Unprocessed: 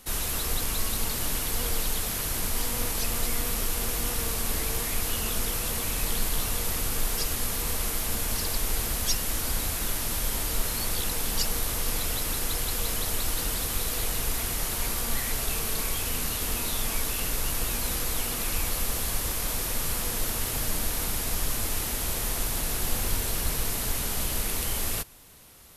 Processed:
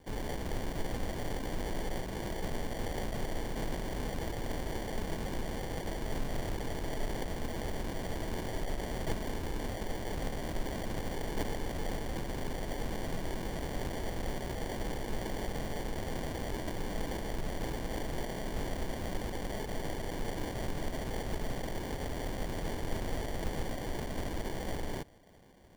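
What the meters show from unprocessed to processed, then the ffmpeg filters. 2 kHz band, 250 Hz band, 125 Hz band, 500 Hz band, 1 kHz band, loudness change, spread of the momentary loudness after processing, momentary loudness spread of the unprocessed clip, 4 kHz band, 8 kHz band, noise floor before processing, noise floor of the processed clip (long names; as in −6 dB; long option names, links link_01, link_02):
−8.0 dB, −0.5 dB, −4.0 dB, 0.0 dB, −4.0 dB, −10.5 dB, 1 LU, 1 LU, −13.5 dB, −21.0 dB, −31 dBFS, −39 dBFS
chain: -af "acrusher=samples=34:mix=1:aa=0.000001,volume=-7.5dB"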